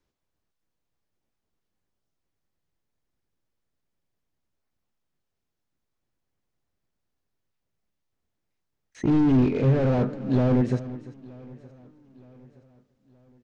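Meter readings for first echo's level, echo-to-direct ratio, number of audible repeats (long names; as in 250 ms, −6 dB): −16.5 dB, −15.5 dB, 3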